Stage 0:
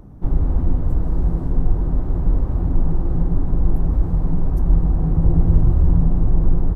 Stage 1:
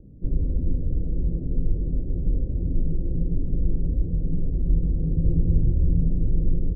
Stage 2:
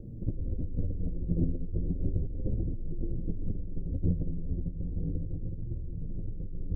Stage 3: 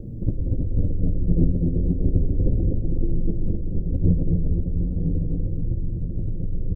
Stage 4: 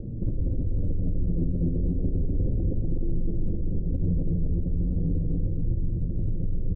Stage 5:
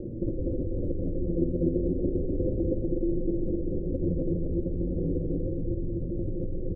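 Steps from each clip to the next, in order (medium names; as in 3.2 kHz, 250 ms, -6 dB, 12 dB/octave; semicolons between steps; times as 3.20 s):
elliptic low-pass 530 Hz, stop band 60 dB; trim -5 dB
compressor with a negative ratio -28 dBFS, ratio -1; flange 0.34 Hz, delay 8.6 ms, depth 3.3 ms, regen +42%; trim +1.5 dB
feedback delay 247 ms, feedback 39%, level -4 dB; trim +8.5 dB
peak limiter -17.5 dBFS, peak gain reduction 10.5 dB; distance through air 160 m
small resonant body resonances 360/510 Hz, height 18 dB, ringing for 40 ms; trim -6.5 dB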